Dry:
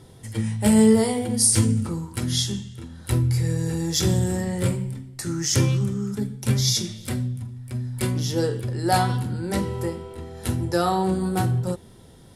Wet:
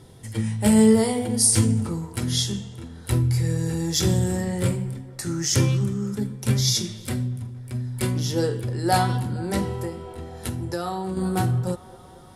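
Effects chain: band-limited delay 0.232 s, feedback 80%, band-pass 780 Hz, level -21 dB; 9.74–11.17 compressor 4:1, threshold -26 dBFS, peak gain reduction 8 dB

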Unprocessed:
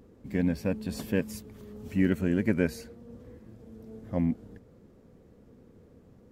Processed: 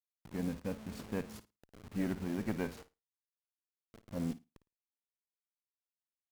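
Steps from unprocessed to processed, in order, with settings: level-crossing sampler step -36.5 dBFS; flutter echo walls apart 9.4 m, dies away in 0.22 s; tube stage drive 15 dB, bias 0.75; gain -4.5 dB

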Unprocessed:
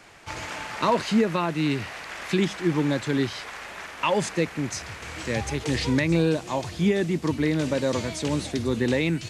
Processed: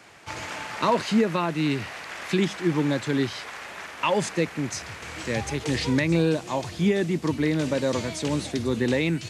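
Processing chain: HPF 77 Hz

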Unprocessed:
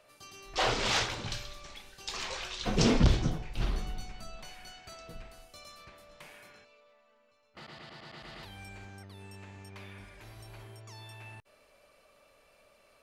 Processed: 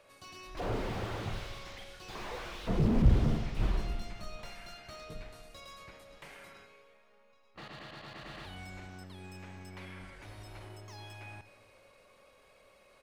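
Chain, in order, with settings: high shelf 5900 Hz -3 dB; pitch shift -1 st; Schroeder reverb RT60 1.9 s, combs from 32 ms, DRR 9.5 dB; slew limiter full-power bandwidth 12 Hz; gain +1.5 dB

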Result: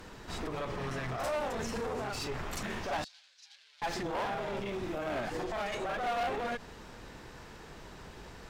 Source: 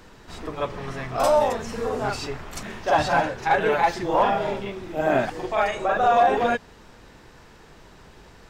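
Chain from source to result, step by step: one-sided clip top -33 dBFS, bottom -16 dBFS; limiter -27.5 dBFS, peak gain reduction 10.5 dB; 3.04–3.82 ladder band-pass 5100 Hz, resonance 40%

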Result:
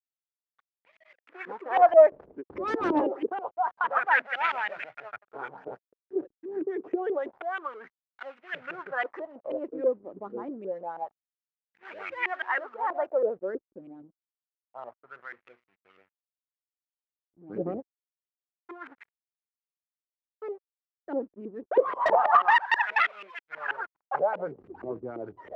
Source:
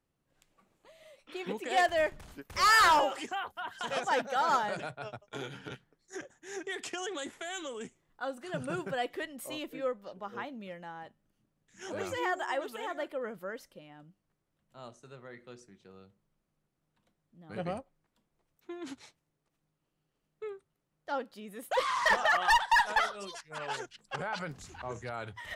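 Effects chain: LFO low-pass saw up 6.2 Hz 350–2800 Hz; backlash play -48.5 dBFS; added harmonics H 5 -16 dB, 6 -11 dB, 8 -16 dB, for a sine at -9.5 dBFS; wah 0.27 Hz 310–2300 Hz, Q 2.8; gain +6.5 dB

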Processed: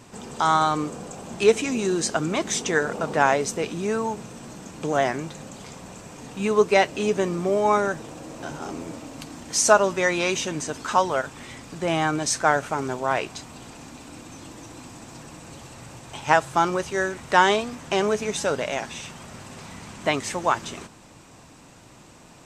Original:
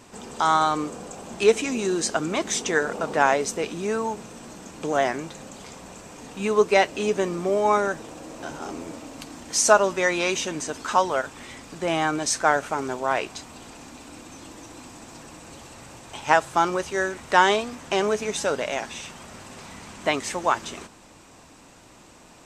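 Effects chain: bell 130 Hz +7 dB 0.99 oct

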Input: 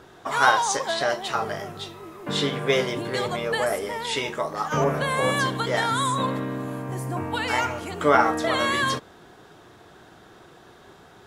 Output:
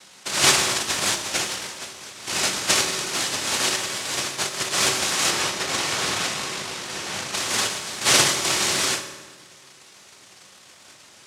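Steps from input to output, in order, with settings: noise vocoder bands 1; 5.3–7.35 high shelf 5400 Hz -6.5 dB; reverb RT60 1.4 s, pre-delay 3 ms, DRR 6.5 dB

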